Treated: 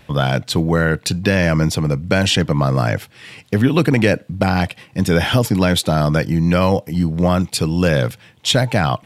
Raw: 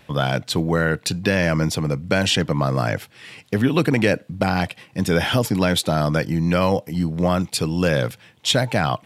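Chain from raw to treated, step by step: bass shelf 100 Hz +7.5 dB; trim +2.5 dB

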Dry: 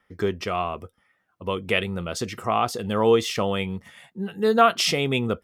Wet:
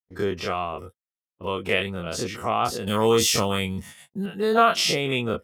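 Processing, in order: every event in the spectrogram widened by 60 ms; 2.87–4.26 s: tone controls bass +5 dB, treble +14 dB; gate -38 dBFS, range -48 dB; trim -4 dB

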